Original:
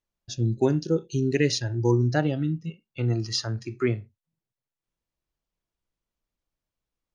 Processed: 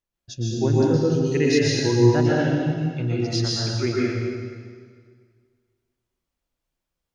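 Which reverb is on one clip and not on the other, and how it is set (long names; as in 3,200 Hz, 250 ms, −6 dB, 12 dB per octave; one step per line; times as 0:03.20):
dense smooth reverb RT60 1.9 s, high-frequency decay 0.9×, pre-delay 105 ms, DRR −6 dB
level −2 dB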